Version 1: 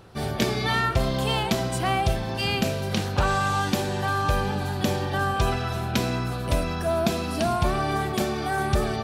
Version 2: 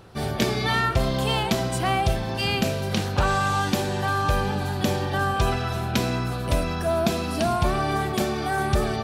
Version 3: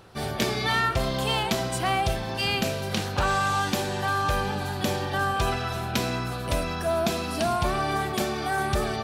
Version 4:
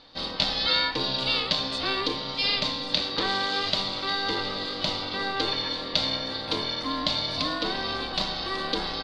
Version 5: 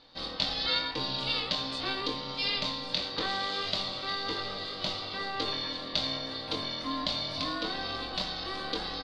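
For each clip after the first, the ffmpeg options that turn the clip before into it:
-af "acontrast=28,volume=-4dB"
-af "lowshelf=f=460:g=-5,asoftclip=type=hard:threshold=-16.5dB"
-af "lowpass=f=4.1k:t=q:w=11,aeval=exprs='val(0)*sin(2*PI*390*n/s)':c=same,aecho=1:1:1146:0.251,volume=-3dB"
-filter_complex "[0:a]asplit=2[a][b];[b]adelay=22,volume=-6.5dB[c];[a][c]amix=inputs=2:normalize=0,volume=-6dB"

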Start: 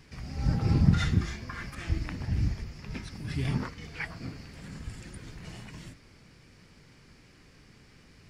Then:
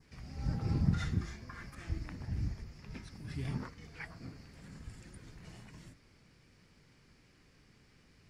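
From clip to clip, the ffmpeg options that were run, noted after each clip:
-af "adynamicequalizer=threshold=0.00126:dfrequency=3000:dqfactor=1.5:tfrequency=3000:tqfactor=1.5:attack=5:release=100:ratio=0.375:range=2.5:mode=cutabove:tftype=bell,volume=-8dB"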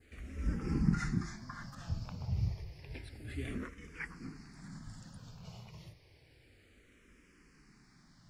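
-filter_complex "[0:a]asplit=2[a][b];[b]afreqshift=-0.3[c];[a][c]amix=inputs=2:normalize=1,volume=4dB"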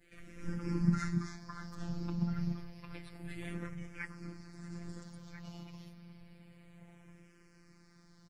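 -filter_complex "[0:a]afftfilt=real='hypot(re,im)*cos(PI*b)':imag='0':win_size=1024:overlap=0.75,asplit=2[a][b];[b]adelay=1341,volume=-7dB,highshelf=f=4k:g=-30.2[c];[a][c]amix=inputs=2:normalize=0,volume=2.5dB"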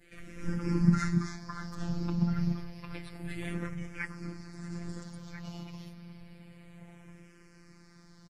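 -af "aresample=32000,aresample=44100,volume=5.5dB"

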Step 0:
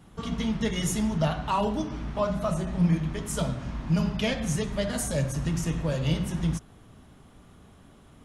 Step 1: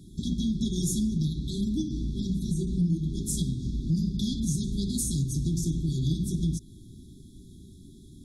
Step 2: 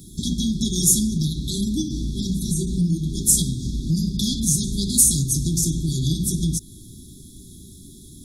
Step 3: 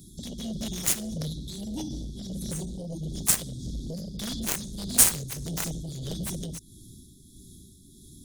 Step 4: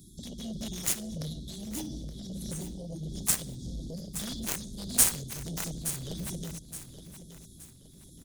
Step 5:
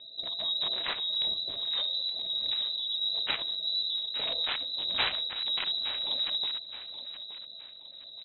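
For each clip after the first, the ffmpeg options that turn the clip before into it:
-af "afftfilt=real='re*(1-between(b*sr/4096,400,3300))':imag='im*(1-between(b*sr/4096,400,3300))':win_size=4096:overlap=0.75,acompressor=threshold=-31dB:ratio=2.5,volume=5dB"
-af "crystalizer=i=3:c=0,volume=4.5dB"
-af "aeval=exprs='0.891*(cos(1*acos(clip(val(0)/0.891,-1,1)))-cos(1*PI/2))+0.2*(cos(7*acos(clip(val(0)/0.891,-1,1)))-cos(7*PI/2))':c=same,tremolo=f=1.6:d=0.43,volume=-1dB"
-af "aecho=1:1:871|1742|2613|3484:0.251|0.0879|0.0308|0.0108,volume=-4dB"
-af "lowpass=f=3.4k:t=q:w=0.5098,lowpass=f=3.4k:t=q:w=0.6013,lowpass=f=3.4k:t=q:w=0.9,lowpass=f=3.4k:t=q:w=2.563,afreqshift=-4000,volume=6.5dB"

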